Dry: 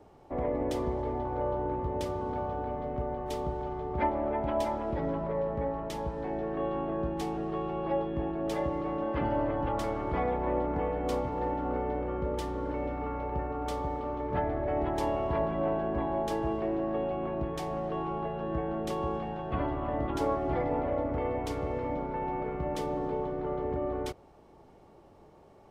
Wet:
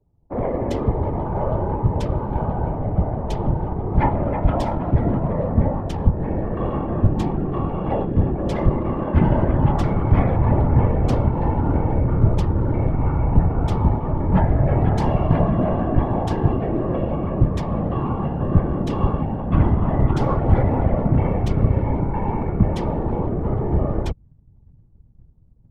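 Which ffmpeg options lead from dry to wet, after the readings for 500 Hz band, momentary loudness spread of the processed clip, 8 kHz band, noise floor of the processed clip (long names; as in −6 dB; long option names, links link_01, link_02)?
+5.5 dB, 6 LU, can't be measured, −50 dBFS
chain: -af "anlmdn=2.51,acontrast=49,asubboost=boost=5:cutoff=180,afftfilt=real='hypot(re,im)*cos(2*PI*random(0))':imag='hypot(re,im)*sin(2*PI*random(1))':win_size=512:overlap=0.75,volume=8dB"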